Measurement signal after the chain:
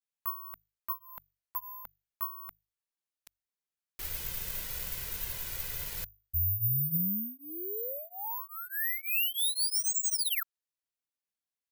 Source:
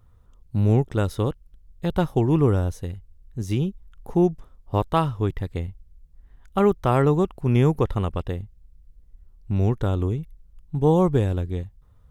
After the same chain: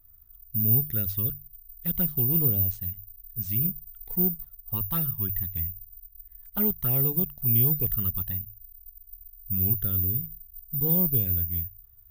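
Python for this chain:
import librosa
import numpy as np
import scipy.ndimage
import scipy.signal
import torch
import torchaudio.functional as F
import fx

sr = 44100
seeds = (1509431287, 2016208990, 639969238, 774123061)

p1 = fx.band_shelf(x, sr, hz=590.0, db=-8.5, octaves=2.5)
p2 = fx.hum_notches(p1, sr, base_hz=50, count=3)
p3 = fx.vibrato(p2, sr, rate_hz=0.5, depth_cents=72.0)
p4 = fx.env_flanger(p3, sr, rest_ms=3.3, full_db=-18.5)
p5 = 10.0 ** (-23.0 / 20.0) * np.tanh(p4 / 10.0 ** (-23.0 / 20.0))
p6 = p4 + (p5 * 10.0 ** (-4.0 / 20.0))
p7 = (np.kron(p6[::3], np.eye(3)[0]) * 3)[:len(p6)]
y = p7 * 10.0 ** (-8.5 / 20.0)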